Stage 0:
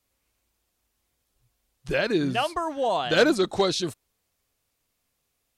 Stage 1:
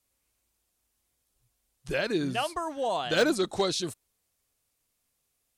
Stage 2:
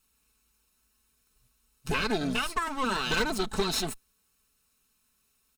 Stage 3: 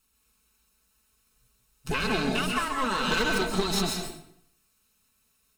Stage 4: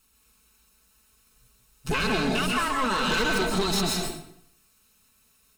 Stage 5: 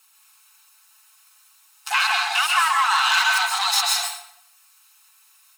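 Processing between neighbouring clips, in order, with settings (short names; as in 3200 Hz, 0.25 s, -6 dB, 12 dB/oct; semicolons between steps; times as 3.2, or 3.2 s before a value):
de-esser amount 50%; bell 9800 Hz +6.5 dB 1.3 oct; gain -4.5 dB
minimum comb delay 0.75 ms; compressor 6:1, threshold -32 dBFS, peak gain reduction 10.5 dB; comb 4.6 ms, depth 57%; gain +6 dB
reverb RT60 0.70 s, pre-delay 0.126 s, DRR 1.5 dB
in parallel at +0.5 dB: limiter -24.5 dBFS, peak gain reduction 10.5 dB; on the sum: soft clip -17.5 dBFS, distortion -18 dB
brick-wall FIR high-pass 700 Hz; gain +8 dB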